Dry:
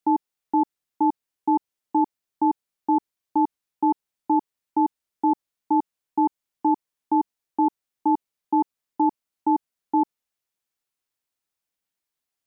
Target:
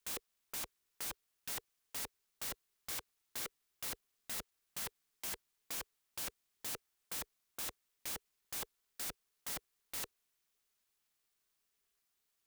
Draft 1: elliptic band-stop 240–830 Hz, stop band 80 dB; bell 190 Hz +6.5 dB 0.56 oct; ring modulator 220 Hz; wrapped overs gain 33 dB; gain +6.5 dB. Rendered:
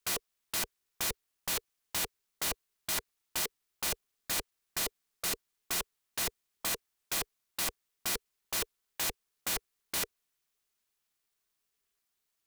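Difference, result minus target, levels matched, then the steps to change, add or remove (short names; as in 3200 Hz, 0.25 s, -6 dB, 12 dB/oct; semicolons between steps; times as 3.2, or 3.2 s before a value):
wrapped overs: distortion -10 dB
change: wrapped overs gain 42 dB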